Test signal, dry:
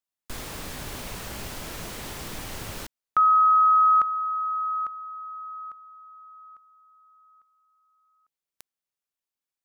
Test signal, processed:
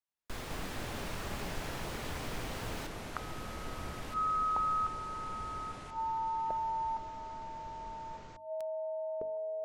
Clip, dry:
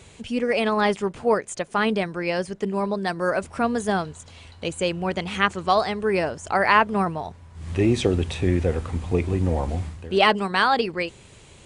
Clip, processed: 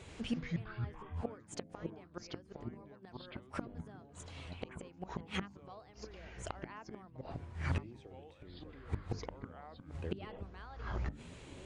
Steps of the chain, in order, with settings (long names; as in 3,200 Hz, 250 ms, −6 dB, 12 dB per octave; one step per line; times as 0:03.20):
gate with flip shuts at −19 dBFS, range −30 dB
high-shelf EQ 5,100 Hz −10 dB
delay with pitch and tempo change per echo 86 ms, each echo −6 semitones, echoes 3
mains-hum notches 50/100/150/200/250/300 Hz
level −3.5 dB